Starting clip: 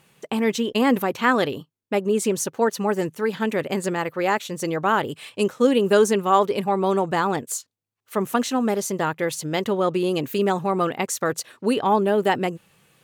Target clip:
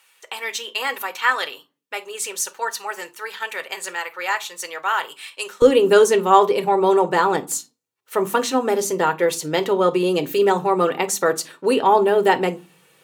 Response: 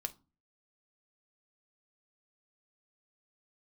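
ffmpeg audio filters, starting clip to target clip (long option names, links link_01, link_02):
-filter_complex "[0:a]asetnsamples=nb_out_samples=441:pad=0,asendcmd='5.62 highpass f 230',highpass=1200[link_01];[1:a]atrim=start_sample=2205[link_02];[link_01][link_02]afir=irnorm=-1:irlink=0,volume=5dB"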